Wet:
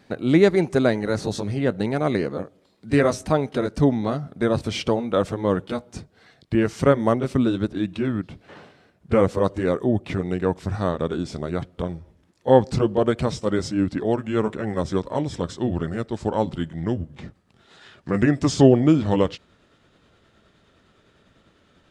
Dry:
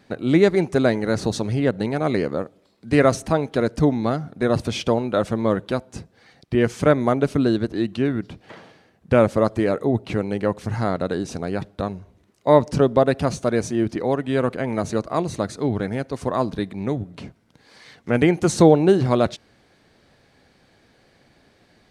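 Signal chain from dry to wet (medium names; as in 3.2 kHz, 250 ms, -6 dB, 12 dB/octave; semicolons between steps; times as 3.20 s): pitch bend over the whole clip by -4 st starting unshifted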